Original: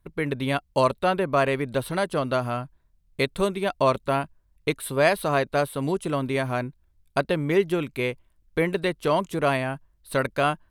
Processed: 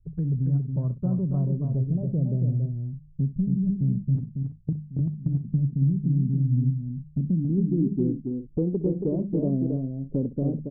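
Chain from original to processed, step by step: low-pass sweep 1800 Hz -> 240 Hz, 0.6–3.15; envelope phaser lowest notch 170 Hz, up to 2300 Hz, full sweep at -22.5 dBFS; in parallel at -9 dB: soft clip -30.5 dBFS, distortion -5 dB; on the sum: low-pass sweep 160 Hz -> 490 Hz, 7.06–8.46; 4.15–5.45 level quantiser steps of 21 dB; bell 120 Hz +4 dB 0.77 oct; notches 50/100/150/200 Hz; compressor 2.5:1, threshold -30 dBFS, peak gain reduction 10.5 dB; on a send: tapped delay 65/278/330 ms -17/-5/-14.5 dB; on the sum: gain +4 dB

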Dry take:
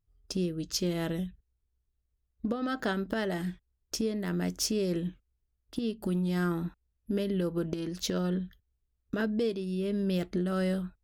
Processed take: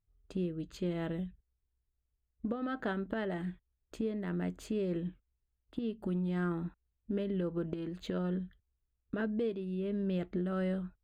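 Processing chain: running mean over 8 samples; gain -4 dB

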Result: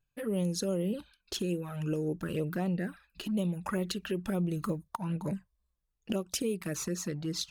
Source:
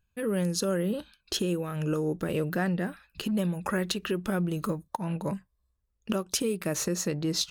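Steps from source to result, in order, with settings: vocal rider within 3 dB 2 s; envelope flanger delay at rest 7 ms, full sweep at -23.5 dBFS; gain -2.5 dB

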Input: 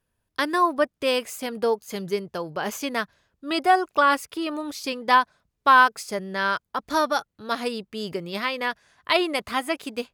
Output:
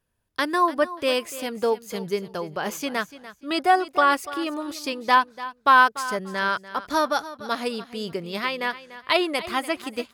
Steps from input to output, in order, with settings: feedback echo 0.292 s, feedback 22%, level -15.5 dB

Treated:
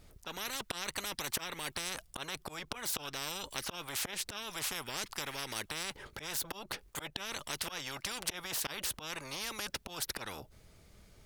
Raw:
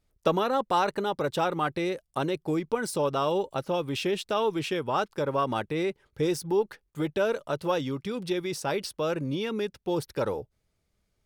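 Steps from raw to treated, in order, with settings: auto swell 0.315 s; spectral compressor 10:1; gain -2.5 dB

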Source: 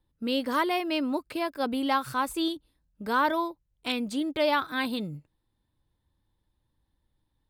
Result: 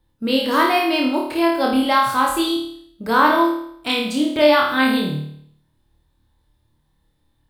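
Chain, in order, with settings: flutter echo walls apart 4.6 m, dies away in 0.66 s; gain +7 dB

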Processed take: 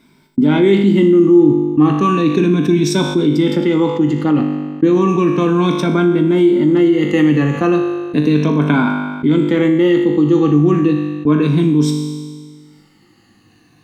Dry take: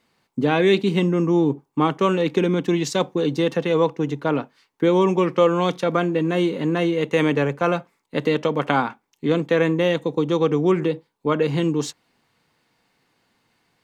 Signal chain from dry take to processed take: moving spectral ripple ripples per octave 1.6, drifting -0.34 Hz, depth 12 dB; gate -38 dBFS, range -25 dB; resonant low shelf 400 Hz +6 dB, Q 3; resonator 50 Hz, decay 0.86 s, harmonics all, mix 80%; fast leveller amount 50%; gain +3 dB

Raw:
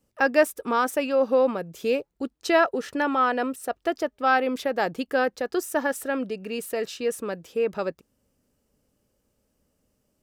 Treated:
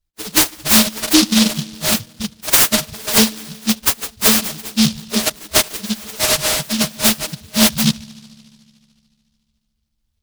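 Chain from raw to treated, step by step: frequency quantiser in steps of 6 st; spectral gate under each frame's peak -15 dB weak; gate -57 dBFS, range -14 dB; spectral gate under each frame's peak -15 dB strong; spectral noise reduction 23 dB; 5.56–6.73 bell 710 Hz +7 dB 0.86 oct; compressor 6:1, threshold -39 dBFS, peak gain reduction 12.5 dB; air absorption 65 m; darkening echo 73 ms, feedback 83%, low-pass 1100 Hz, level -23 dB; maximiser +31.5 dB; noise-modulated delay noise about 4100 Hz, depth 0.39 ms

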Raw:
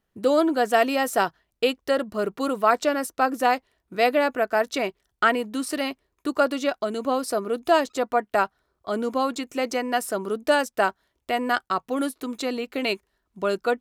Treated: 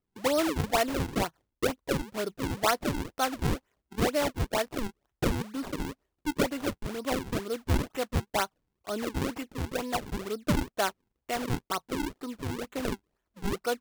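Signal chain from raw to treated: 12.72–13.49 high shelf 6700 Hz +7.5 dB; decimation with a swept rate 42×, swing 160% 2.1 Hz; gain -6.5 dB

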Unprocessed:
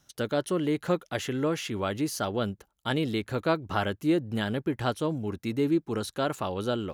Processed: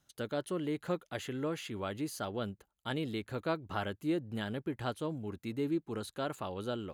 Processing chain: notch 5600 Hz, Q 6; gain -8 dB

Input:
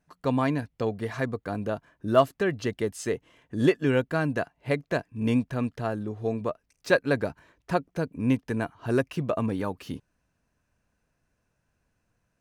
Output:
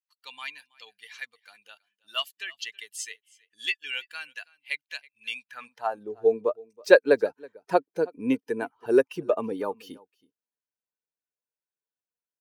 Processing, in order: per-bin expansion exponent 1.5; echo 0.324 s -24 dB; high-pass sweep 2800 Hz -> 400 Hz, 5.38–6.14; gain +4 dB

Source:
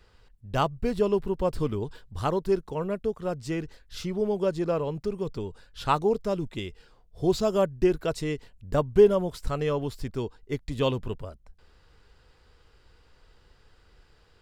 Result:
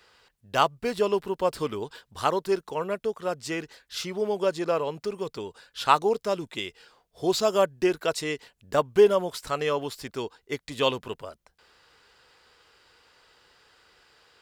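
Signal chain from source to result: HPF 850 Hz 6 dB/oct; gain +7 dB

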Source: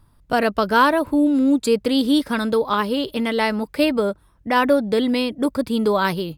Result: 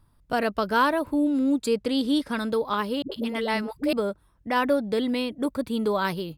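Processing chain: 1.69–2.34 LPF 11000 Hz 12 dB/oct; 3.02–3.93 dispersion highs, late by 96 ms, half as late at 340 Hz; 5.13–5.91 notch 5000 Hz, Q 8.6; gain -6 dB

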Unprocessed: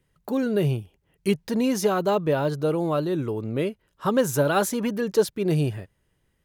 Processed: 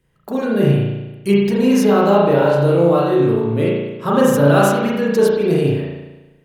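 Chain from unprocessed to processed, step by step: 2.4–3.44 flutter echo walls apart 3.7 m, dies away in 0.23 s; spring tank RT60 1.1 s, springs 35 ms, chirp 60 ms, DRR -5.5 dB; gain +2 dB

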